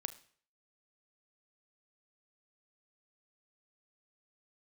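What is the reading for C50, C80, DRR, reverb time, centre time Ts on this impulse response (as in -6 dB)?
15.5 dB, 19.5 dB, 11.5 dB, 0.50 s, 5 ms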